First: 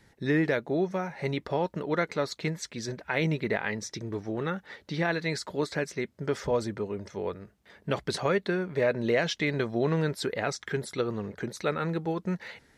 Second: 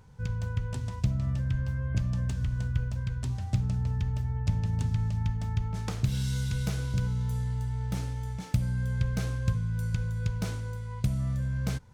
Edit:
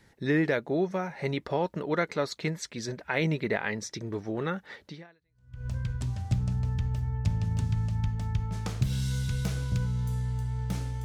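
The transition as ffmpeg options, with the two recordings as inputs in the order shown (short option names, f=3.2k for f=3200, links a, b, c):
-filter_complex "[0:a]apad=whole_dur=11.04,atrim=end=11.04,atrim=end=5.68,asetpts=PTS-STARTPTS[a];[1:a]atrim=start=2.08:end=8.26,asetpts=PTS-STARTPTS[b];[a][b]acrossfade=d=0.82:c1=exp:c2=exp"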